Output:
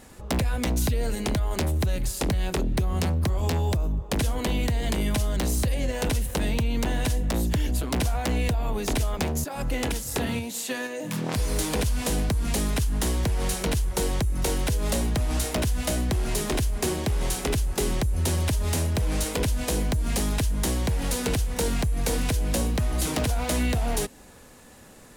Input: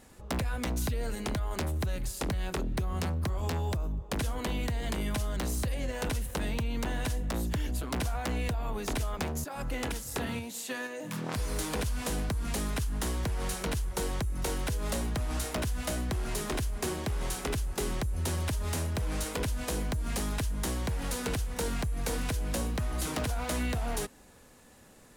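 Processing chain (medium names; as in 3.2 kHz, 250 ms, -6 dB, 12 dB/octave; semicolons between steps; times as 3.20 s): dynamic bell 1.3 kHz, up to -5 dB, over -51 dBFS, Q 1.4; trim +7 dB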